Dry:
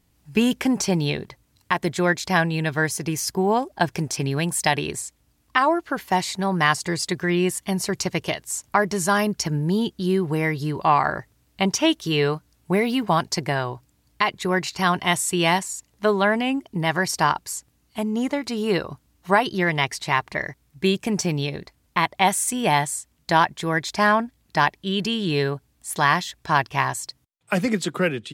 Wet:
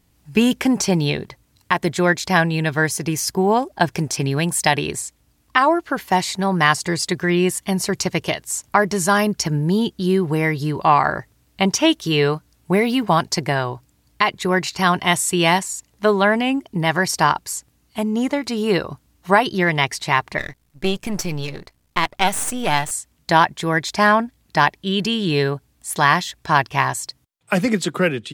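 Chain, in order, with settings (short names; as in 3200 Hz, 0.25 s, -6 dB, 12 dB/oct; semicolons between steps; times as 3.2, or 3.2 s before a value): 20.38–22.91 half-wave gain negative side -12 dB; gain +3.5 dB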